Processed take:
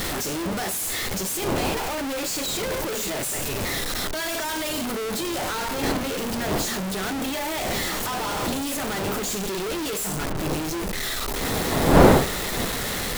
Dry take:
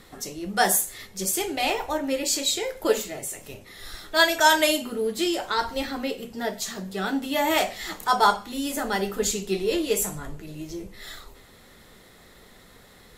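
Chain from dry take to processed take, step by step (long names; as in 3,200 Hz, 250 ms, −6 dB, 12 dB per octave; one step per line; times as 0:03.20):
sign of each sample alone
wind on the microphone 580 Hz −27 dBFS
level −1 dB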